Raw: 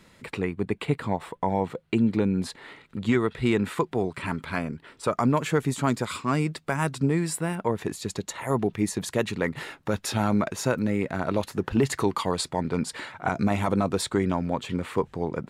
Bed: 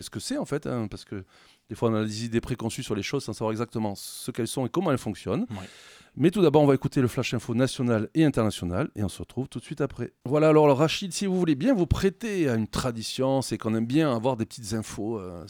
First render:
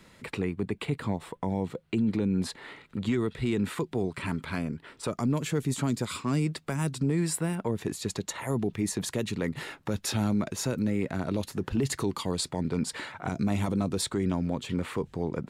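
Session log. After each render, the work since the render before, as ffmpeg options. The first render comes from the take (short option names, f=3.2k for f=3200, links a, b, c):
-filter_complex "[0:a]acrossover=split=420|3000[a][b][c];[b]acompressor=threshold=-36dB:ratio=6[d];[a][d][c]amix=inputs=3:normalize=0,alimiter=limit=-18.5dB:level=0:latency=1:release=15"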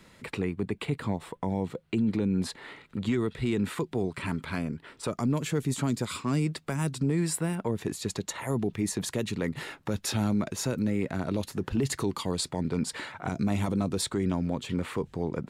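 -af anull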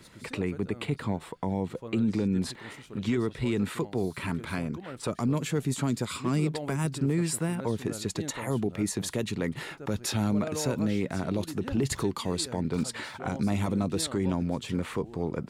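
-filter_complex "[1:a]volume=-17dB[a];[0:a][a]amix=inputs=2:normalize=0"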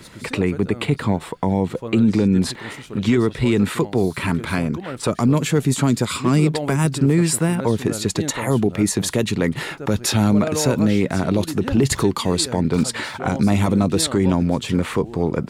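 -af "volume=10.5dB"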